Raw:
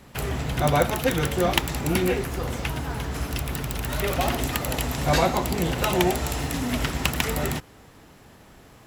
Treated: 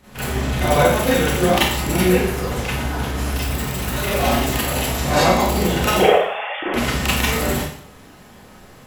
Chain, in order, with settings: 5.99–6.74 sine-wave speech; Schroeder reverb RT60 0.57 s, combs from 30 ms, DRR -10 dB; gain -4 dB

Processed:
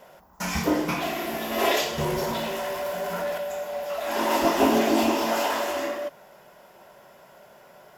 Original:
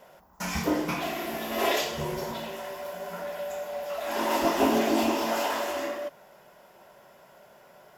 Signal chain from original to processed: 1.98–3.38 power-law curve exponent 0.7; gain +3 dB

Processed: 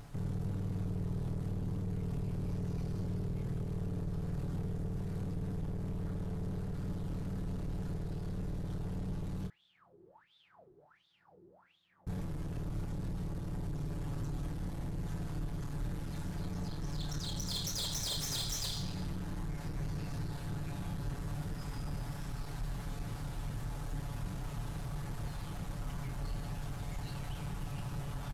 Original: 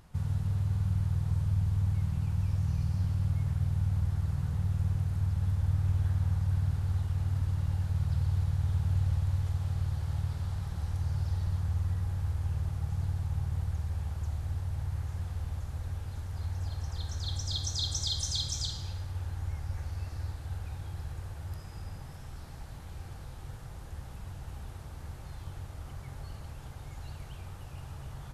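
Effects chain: minimum comb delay 7 ms; low shelf 110 Hz +5.5 dB; compressor, threshold -33 dBFS, peak gain reduction 9.5 dB; 9.47–12.07 wah 1.4 Hz 360–3600 Hz, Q 20; soft clip -37.5 dBFS, distortion -11 dB; doubler 27 ms -7.5 dB; gain +5 dB

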